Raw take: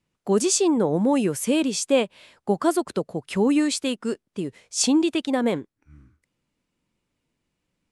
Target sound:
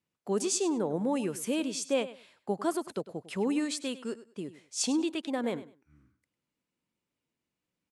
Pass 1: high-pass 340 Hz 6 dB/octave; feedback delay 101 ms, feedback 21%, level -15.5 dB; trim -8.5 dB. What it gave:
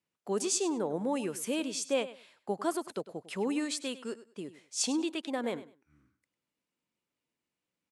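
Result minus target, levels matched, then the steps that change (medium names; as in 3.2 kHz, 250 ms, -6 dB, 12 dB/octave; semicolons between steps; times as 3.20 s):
125 Hz band -3.0 dB
change: high-pass 140 Hz 6 dB/octave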